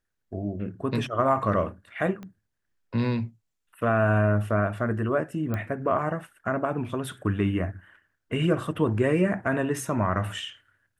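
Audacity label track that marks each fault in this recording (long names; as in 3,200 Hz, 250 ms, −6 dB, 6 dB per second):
2.230000	2.230000	click −27 dBFS
5.540000	5.540000	click −18 dBFS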